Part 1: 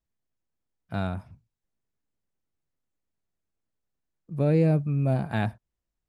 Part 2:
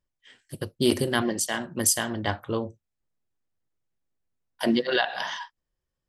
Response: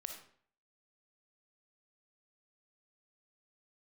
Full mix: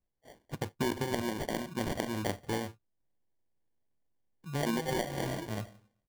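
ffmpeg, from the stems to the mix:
-filter_complex "[0:a]adelay=150,volume=-9.5dB,asplit=2[link_01][link_02];[link_02]volume=-6dB[link_03];[1:a]acrossover=split=6400[link_04][link_05];[link_05]acompressor=threshold=-37dB:ratio=4:attack=1:release=60[link_06];[link_04][link_06]amix=inputs=2:normalize=0,volume=-2dB,asplit=2[link_07][link_08];[link_08]apad=whole_len=274852[link_09];[link_01][link_09]sidechaincompress=threshold=-35dB:ratio=8:attack=16:release=689[link_10];[2:a]atrim=start_sample=2205[link_11];[link_03][link_11]afir=irnorm=-1:irlink=0[link_12];[link_10][link_07][link_12]amix=inputs=3:normalize=0,acrusher=samples=34:mix=1:aa=0.000001,acompressor=threshold=-29dB:ratio=4"

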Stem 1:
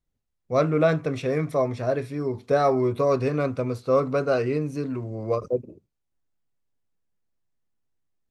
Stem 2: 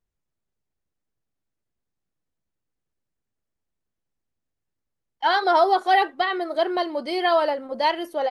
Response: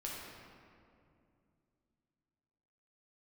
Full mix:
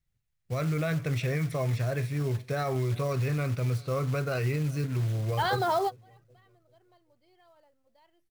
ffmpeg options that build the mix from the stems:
-filter_complex "[0:a]equalizer=frequency=125:width_type=o:width=1:gain=9,equalizer=frequency=250:width_type=o:width=1:gain=-9,equalizer=frequency=500:width_type=o:width=1:gain=-5,equalizer=frequency=1000:width_type=o:width=1:gain=-6,equalizer=frequency=2000:width_type=o:width=1:gain=5,alimiter=limit=-22dB:level=0:latency=1:release=50,volume=0dB,asplit=3[link_01][link_02][link_03];[link_02]volume=-22.5dB[link_04];[1:a]alimiter=limit=-14.5dB:level=0:latency=1:release=36,adelay=150,volume=-5dB[link_05];[link_03]apad=whole_len=372645[link_06];[link_05][link_06]sidechaingate=range=-35dB:threshold=-60dB:ratio=16:detection=peak[link_07];[link_04]aecho=0:1:389|778|1167|1556|1945|2334:1|0.4|0.16|0.064|0.0256|0.0102[link_08];[link_01][link_07][link_08]amix=inputs=3:normalize=0,acrusher=bits=5:mode=log:mix=0:aa=0.000001"

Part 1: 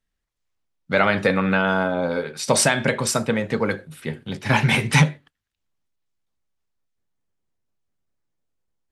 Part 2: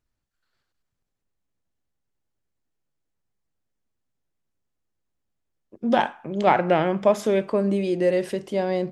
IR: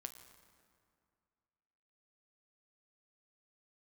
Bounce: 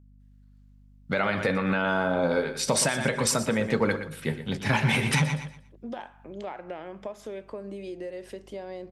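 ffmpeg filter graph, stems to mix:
-filter_complex "[0:a]adelay=200,volume=2dB,asplit=2[link_01][link_02];[link_02]volume=-14dB[link_03];[1:a]highpass=240,aeval=exprs='val(0)+0.00562*(sin(2*PI*50*n/s)+sin(2*PI*2*50*n/s)/2+sin(2*PI*3*50*n/s)/3+sin(2*PI*4*50*n/s)/4+sin(2*PI*5*50*n/s)/5)':channel_layout=same,acompressor=threshold=-26dB:ratio=6,volume=-8dB,asplit=2[link_04][link_05];[link_05]apad=whole_len=402170[link_06];[link_01][link_06]sidechaincompress=threshold=-55dB:ratio=8:attack=36:release=113[link_07];[link_03]aecho=0:1:119|238|357|476:1|0.25|0.0625|0.0156[link_08];[link_07][link_04][link_08]amix=inputs=3:normalize=0,alimiter=limit=-13dB:level=0:latency=1:release=211"

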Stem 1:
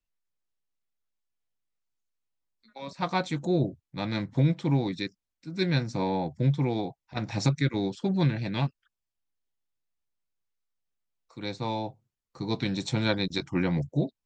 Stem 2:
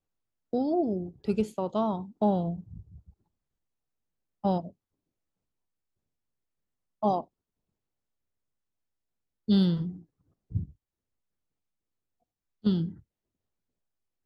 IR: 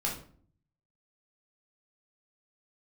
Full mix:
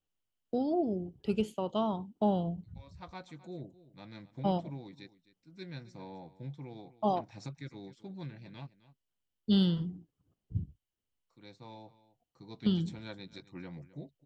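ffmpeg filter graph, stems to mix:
-filter_complex "[0:a]volume=-18.5dB,asplit=2[link_01][link_02];[link_02]volume=-17.5dB[link_03];[1:a]equalizer=frequency=3000:width_type=o:width=0.25:gain=12.5,volume=-3.5dB[link_04];[link_03]aecho=0:1:261:1[link_05];[link_01][link_04][link_05]amix=inputs=3:normalize=0"

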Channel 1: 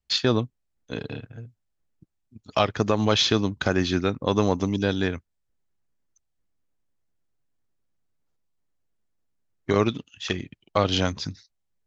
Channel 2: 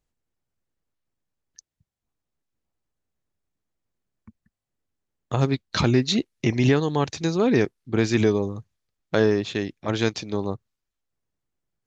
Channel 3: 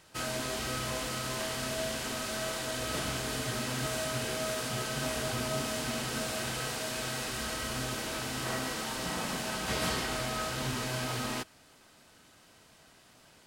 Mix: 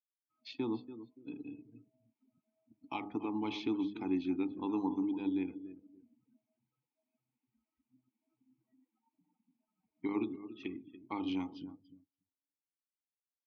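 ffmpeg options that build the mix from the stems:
ffmpeg -i stem1.wav -i stem2.wav -i stem3.wav -filter_complex "[0:a]bandreject=frequency=50.04:width_type=h:width=4,bandreject=frequency=100.08:width_type=h:width=4,bandreject=frequency=150.12:width_type=h:width=4,bandreject=frequency=200.16:width_type=h:width=4,bandreject=frequency=250.2:width_type=h:width=4,bandreject=frequency=300.24:width_type=h:width=4,bandreject=frequency=350.28:width_type=h:width=4,bandreject=frequency=400.32:width_type=h:width=4,bandreject=frequency=450.36:width_type=h:width=4,bandreject=frequency=500.4:width_type=h:width=4,bandreject=frequency=550.44:width_type=h:width=4,bandreject=frequency=600.48:width_type=h:width=4,bandreject=frequency=650.52:width_type=h:width=4,bandreject=frequency=700.56:width_type=h:width=4,bandreject=frequency=750.6:width_type=h:width=4,bandreject=frequency=800.64:width_type=h:width=4,bandreject=frequency=850.68:width_type=h:width=4,bandreject=frequency=900.72:width_type=h:width=4,bandreject=frequency=950.76:width_type=h:width=4,bandreject=frequency=1000.8:width_type=h:width=4,bandreject=frequency=1050.84:width_type=h:width=4,bandreject=frequency=1100.88:width_type=h:width=4,bandreject=frequency=1150.92:width_type=h:width=4,bandreject=frequency=1200.96:width_type=h:width=4,bandreject=frequency=1251:width_type=h:width=4,adelay=350,volume=-1dB,asplit=2[link_01][link_02];[link_02]volume=-13dB[link_03];[2:a]alimiter=level_in=2.5dB:limit=-24dB:level=0:latency=1:release=324,volume=-2.5dB,adelay=150,volume=-11.5dB[link_04];[link_03]aecho=0:1:286|572|858|1144:1|0.31|0.0961|0.0298[link_05];[link_01][link_04][link_05]amix=inputs=3:normalize=0,bandreject=frequency=103.3:width_type=h:width=4,bandreject=frequency=206.6:width_type=h:width=4,bandreject=frequency=309.9:width_type=h:width=4,bandreject=frequency=413.2:width_type=h:width=4,bandreject=frequency=516.5:width_type=h:width=4,bandreject=frequency=619.8:width_type=h:width=4,bandreject=frequency=723.1:width_type=h:width=4,bandreject=frequency=826.4:width_type=h:width=4,afftdn=noise_reduction=32:noise_floor=-37,asplit=3[link_06][link_07][link_08];[link_06]bandpass=frequency=300:width_type=q:width=8,volume=0dB[link_09];[link_07]bandpass=frequency=870:width_type=q:width=8,volume=-6dB[link_10];[link_08]bandpass=frequency=2240:width_type=q:width=8,volume=-9dB[link_11];[link_09][link_10][link_11]amix=inputs=3:normalize=0" out.wav

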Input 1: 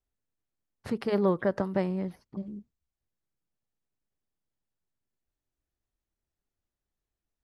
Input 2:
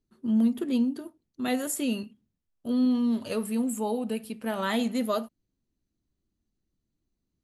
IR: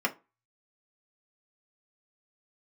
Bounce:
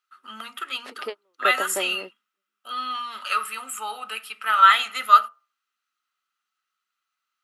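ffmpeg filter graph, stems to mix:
-filter_complex "[0:a]highpass=frequency=350:width=0.5412,highpass=frequency=350:width=1.3066,volume=0.5dB[link_01];[1:a]highpass=frequency=1300:width_type=q:width=9.1,volume=2dB,asplit=3[link_02][link_03][link_04];[link_03]volume=-13.5dB[link_05];[link_04]apad=whole_len=327790[link_06];[link_01][link_06]sidechaingate=range=-45dB:threshold=-48dB:ratio=16:detection=peak[link_07];[2:a]atrim=start_sample=2205[link_08];[link_05][link_08]afir=irnorm=-1:irlink=0[link_09];[link_07][link_02][link_09]amix=inputs=3:normalize=0,equalizer=frequency=3000:width_type=o:width=0.9:gain=8.5"

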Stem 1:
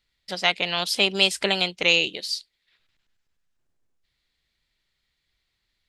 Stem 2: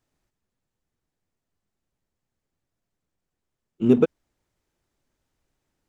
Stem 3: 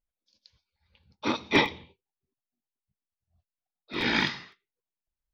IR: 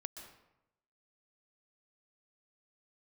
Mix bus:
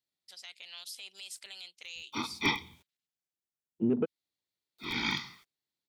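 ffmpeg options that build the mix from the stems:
-filter_complex "[0:a]aderivative,alimiter=limit=-21.5dB:level=0:latency=1:release=34,volume=-11.5dB[link_01];[1:a]afwtdn=0.01,highpass=120,alimiter=limit=-16dB:level=0:latency=1:release=230,volume=-3.5dB[link_02];[2:a]aemphasis=mode=production:type=50kf,aecho=1:1:0.9:0.89,acrusher=bits=8:mix=0:aa=0.000001,adelay=900,volume=-11dB[link_03];[link_01][link_02][link_03]amix=inputs=3:normalize=0"

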